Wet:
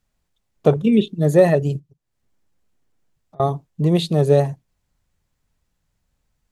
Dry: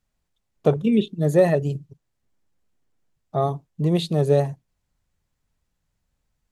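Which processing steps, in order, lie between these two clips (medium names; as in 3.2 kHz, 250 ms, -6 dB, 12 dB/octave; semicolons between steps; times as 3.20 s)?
1.79–3.40 s: compression 6:1, threshold -54 dBFS, peak gain reduction 31.5 dB; trim +3.5 dB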